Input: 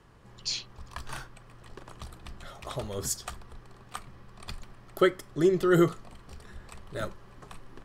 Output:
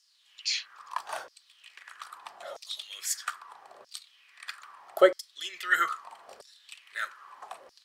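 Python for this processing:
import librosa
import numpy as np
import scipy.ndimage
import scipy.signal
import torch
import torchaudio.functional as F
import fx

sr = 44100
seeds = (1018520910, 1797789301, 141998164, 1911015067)

y = fx.filter_lfo_highpass(x, sr, shape='saw_down', hz=0.78, low_hz=520.0, high_hz=5300.0, q=4.6)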